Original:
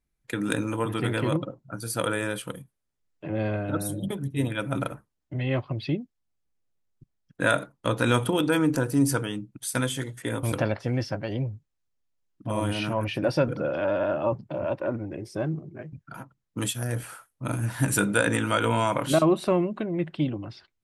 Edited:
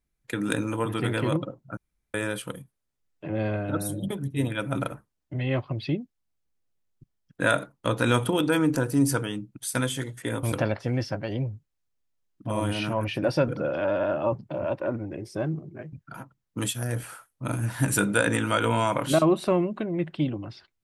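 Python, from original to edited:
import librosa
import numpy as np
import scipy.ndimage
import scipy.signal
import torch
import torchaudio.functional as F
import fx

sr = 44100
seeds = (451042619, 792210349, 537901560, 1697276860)

y = fx.edit(x, sr, fx.room_tone_fill(start_s=1.77, length_s=0.37), tone=tone)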